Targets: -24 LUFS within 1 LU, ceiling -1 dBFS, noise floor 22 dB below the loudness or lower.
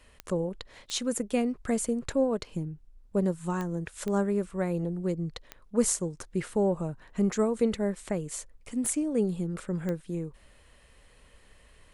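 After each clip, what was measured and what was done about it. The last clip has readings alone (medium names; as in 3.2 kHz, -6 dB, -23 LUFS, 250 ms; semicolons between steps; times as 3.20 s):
clicks found 7; loudness -30.5 LUFS; peak level -13.0 dBFS; loudness target -24.0 LUFS
-> de-click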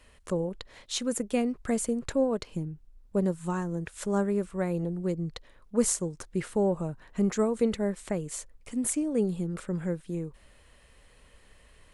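clicks found 0; loudness -30.5 LUFS; peak level -13.0 dBFS; loudness target -24.0 LUFS
-> trim +6.5 dB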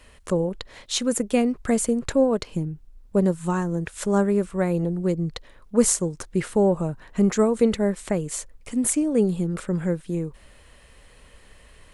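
loudness -24.0 LUFS; peak level -6.5 dBFS; noise floor -52 dBFS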